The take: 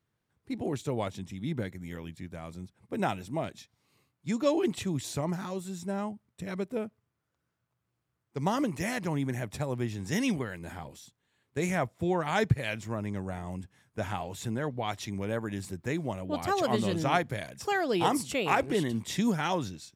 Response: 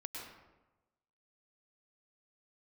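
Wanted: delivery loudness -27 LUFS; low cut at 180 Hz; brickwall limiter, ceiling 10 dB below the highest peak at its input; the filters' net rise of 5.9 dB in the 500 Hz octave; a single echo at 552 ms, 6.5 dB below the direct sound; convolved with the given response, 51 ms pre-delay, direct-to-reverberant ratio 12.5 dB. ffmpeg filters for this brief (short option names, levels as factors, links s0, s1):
-filter_complex "[0:a]highpass=180,equalizer=f=500:t=o:g=7.5,alimiter=limit=0.126:level=0:latency=1,aecho=1:1:552:0.473,asplit=2[s0][s1];[1:a]atrim=start_sample=2205,adelay=51[s2];[s1][s2]afir=irnorm=-1:irlink=0,volume=0.282[s3];[s0][s3]amix=inputs=2:normalize=0,volume=1.5"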